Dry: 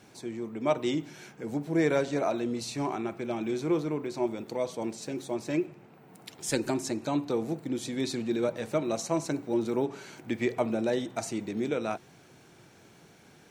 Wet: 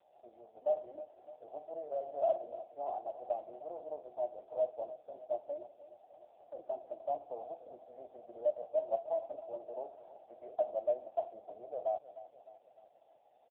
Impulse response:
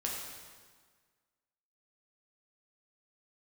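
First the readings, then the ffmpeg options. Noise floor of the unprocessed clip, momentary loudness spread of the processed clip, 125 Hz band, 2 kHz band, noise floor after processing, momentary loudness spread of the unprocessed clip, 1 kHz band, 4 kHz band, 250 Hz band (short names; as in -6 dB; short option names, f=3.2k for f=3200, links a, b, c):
-57 dBFS, 18 LU, under -30 dB, under -30 dB, -67 dBFS, 9 LU, -4.5 dB, under -30 dB, -30.0 dB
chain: -af "alimiter=limit=-22.5dB:level=0:latency=1:release=15,asuperpass=centerf=660:order=4:qfactor=4.1,aecho=1:1:304|608|912|1216|1520|1824:0.178|0.101|0.0578|0.0329|0.0188|0.0107,volume=5.5dB" -ar 8000 -c:a libopencore_amrnb -b:a 5150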